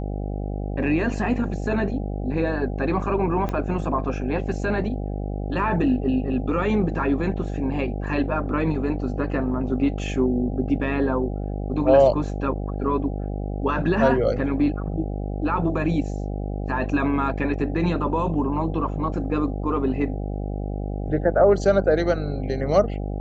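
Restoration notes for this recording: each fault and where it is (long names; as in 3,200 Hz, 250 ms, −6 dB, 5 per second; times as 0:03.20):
mains buzz 50 Hz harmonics 16 −28 dBFS
0:03.49: click −15 dBFS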